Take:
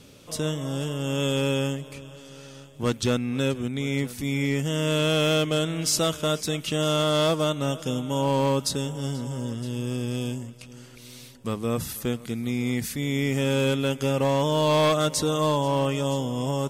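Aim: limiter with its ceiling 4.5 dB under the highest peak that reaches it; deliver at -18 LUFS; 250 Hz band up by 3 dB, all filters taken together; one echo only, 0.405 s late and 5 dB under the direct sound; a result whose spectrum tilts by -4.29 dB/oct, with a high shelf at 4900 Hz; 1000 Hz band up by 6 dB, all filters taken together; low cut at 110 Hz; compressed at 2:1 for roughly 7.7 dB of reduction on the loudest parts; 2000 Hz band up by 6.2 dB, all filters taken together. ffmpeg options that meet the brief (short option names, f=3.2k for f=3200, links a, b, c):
-af "highpass=110,equalizer=f=250:t=o:g=3.5,equalizer=f=1k:t=o:g=5,equalizer=f=2k:t=o:g=6,highshelf=f=4.9k:g=5,acompressor=threshold=-28dB:ratio=2,alimiter=limit=-17.5dB:level=0:latency=1,aecho=1:1:405:0.562,volume=10dB"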